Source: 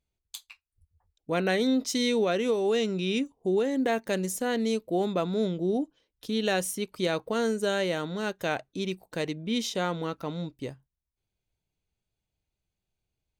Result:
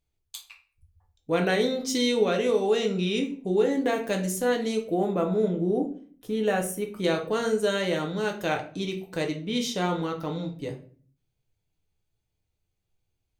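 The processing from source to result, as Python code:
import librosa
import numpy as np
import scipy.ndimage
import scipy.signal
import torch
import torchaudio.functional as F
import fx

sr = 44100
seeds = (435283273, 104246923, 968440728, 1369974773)

y = fx.peak_eq(x, sr, hz=4300.0, db=-13.5, octaves=1.2, at=(4.94, 7.04))
y = fx.room_shoebox(y, sr, seeds[0], volume_m3=35.0, walls='mixed', distance_m=0.45)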